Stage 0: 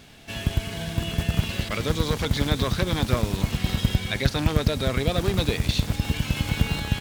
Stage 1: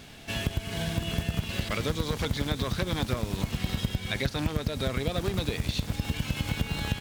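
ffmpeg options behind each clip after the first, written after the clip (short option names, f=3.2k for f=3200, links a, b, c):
-af "acompressor=threshold=-27dB:ratio=4,volume=1.5dB"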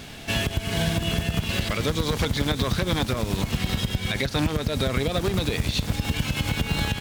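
-af "alimiter=limit=-20.5dB:level=0:latency=1:release=74,volume=7.5dB"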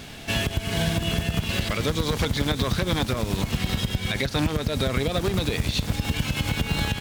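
-af anull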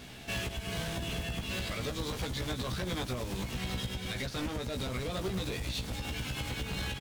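-filter_complex "[0:a]asoftclip=type=hard:threshold=-23.5dB,asplit=2[a][b];[b]adelay=16,volume=-4dB[c];[a][c]amix=inputs=2:normalize=0,volume=-9dB"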